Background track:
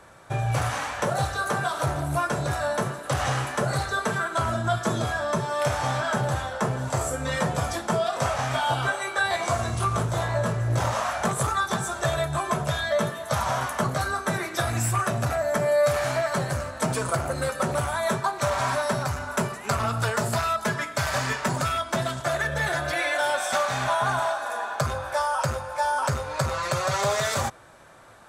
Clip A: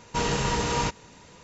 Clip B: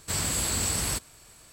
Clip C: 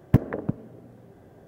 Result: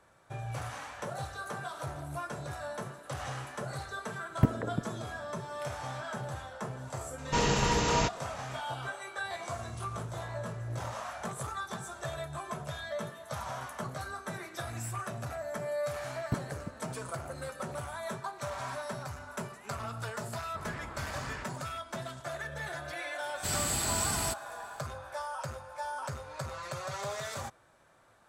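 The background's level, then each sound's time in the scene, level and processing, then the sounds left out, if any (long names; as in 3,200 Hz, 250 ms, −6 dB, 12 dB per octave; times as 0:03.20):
background track −13 dB
0:04.29: mix in C −6 dB
0:07.18: mix in A −1.5 dB
0:16.18: mix in C −14.5 dB
0:20.46: mix in B −11.5 dB + auto-filter low-pass saw up 3.1 Hz 810–2,000 Hz
0:23.35: mix in B −3 dB + notch comb filter 550 Hz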